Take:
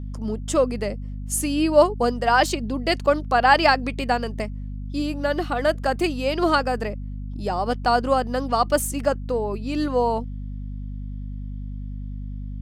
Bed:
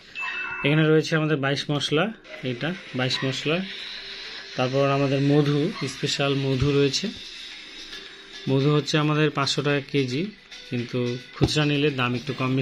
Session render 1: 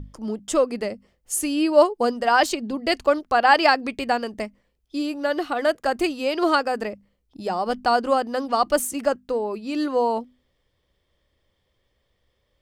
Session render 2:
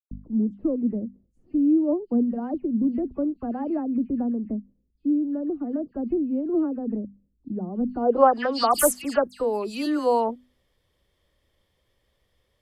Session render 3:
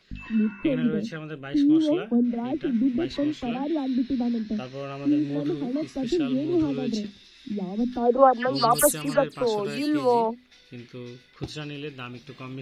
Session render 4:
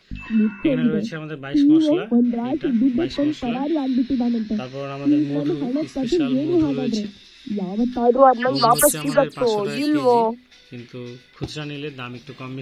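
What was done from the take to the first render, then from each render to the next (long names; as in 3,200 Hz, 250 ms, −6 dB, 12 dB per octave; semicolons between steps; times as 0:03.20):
mains-hum notches 50/100/150/200/250 Hz
low-pass filter sweep 250 Hz → 12,000 Hz, 0:07.83–0:08.76; all-pass dispersion lows, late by 114 ms, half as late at 2,800 Hz
mix in bed −13.5 dB
level +5 dB; brickwall limiter −2 dBFS, peak gain reduction 2 dB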